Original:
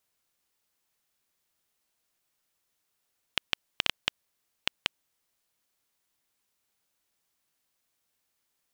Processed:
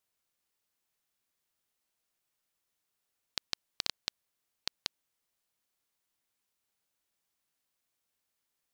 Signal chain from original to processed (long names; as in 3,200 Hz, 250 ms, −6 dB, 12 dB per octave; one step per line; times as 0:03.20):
highs frequency-modulated by the lows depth 0.51 ms
level −5 dB